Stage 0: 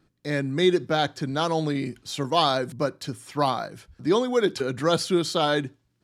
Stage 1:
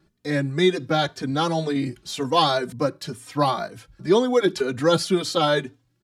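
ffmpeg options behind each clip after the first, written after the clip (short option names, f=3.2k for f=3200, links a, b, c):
-filter_complex "[0:a]asplit=2[a][b];[b]adelay=3.1,afreqshift=2[c];[a][c]amix=inputs=2:normalize=1,volume=5dB"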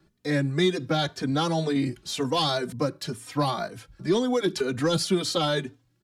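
-filter_complex "[0:a]asoftclip=type=tanh:threshold=-8dB,acrossover=split=270|3000[a][b][c];[b]acompressor=threshold=-24dB:ratio=6[d];[a][d][c]amix=inputs=3:normalize=0"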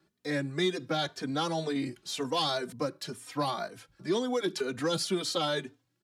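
-af "highpass=f=260:p=1,volume=-4dB"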